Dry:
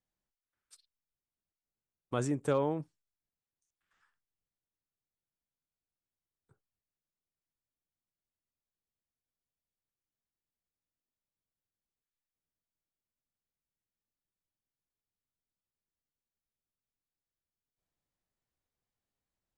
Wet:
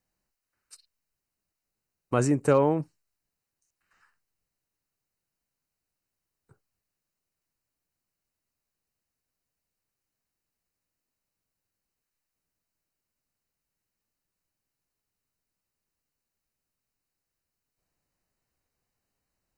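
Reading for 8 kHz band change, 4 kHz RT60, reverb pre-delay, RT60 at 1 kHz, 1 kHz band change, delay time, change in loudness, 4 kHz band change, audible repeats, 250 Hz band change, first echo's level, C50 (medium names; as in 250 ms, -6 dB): +8.5 dB, no reverb, no reverb, no reverb, +8.5 dB, no echo, +8.5 dB, +3.5 dB, no echo, +8.5 dB, no echo, no reverb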